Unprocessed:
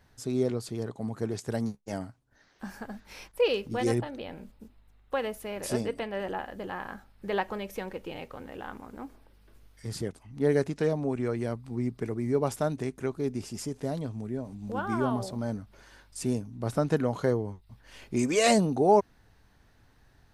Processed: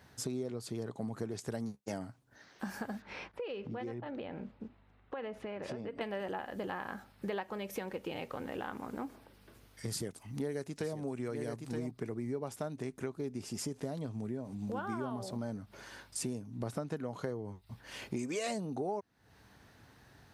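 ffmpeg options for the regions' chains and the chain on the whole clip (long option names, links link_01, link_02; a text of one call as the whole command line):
ffmpeg -i in.wav -filter_complex "[0:a]asettb=1/sr,asplit=3[link_01][link_02][link_03];[link_01]atrim=end=3.024[link_04];[link_02]atrim=start=3.02:end=6.01,asetpts=PTS-STARTPTS,afade=type=in:duration=0.004:curve=qsin,afade=type=out:start_time=2.986:duration=0.004:curve=qsin,lowpass=2600,acompressor=threshold=-41dB:ratio=6:attack=3.2:release=140:knee=1:detection=peak[link_05];[link_03]atrim=start=6.006[link_06];[link_04][link_05]acrossfade=duration=0.004:curve1=hsin:curve2=qsin[link_07];[link_07][link_06]acrossfade=duration=0.004:curve1=qsin:curve2=hsin,asettb=1/sr,asplit=3[link_08][link_09][link_10];[link_08]atrim=end=9.884[link_11];[link_09]atrim=start=9.88:end=11.91,asetpts=PTS-STARTPTS,afade=type=in:duration=0.004:curve=qsin,afade=type=out:start_time=2.026:duration=0.004:curve=qsin,aemphasis=mode=production:type=cd,aecho=1:1:921:0.355,atrim=end_sample=89523[link_12];[link_10]atrim=start=11.906[link_13];[link_11][link_12]acrossfade=duration=0.004:curve1=hsin:curve2=qsin[link_14];[link_14][link_13]acrossfade=duration=0.004:curve1=qsin:curve2=hsin,highpass=95,acompressor=threshold=-40dB:ratio=6,volume=4.5dB" out.wav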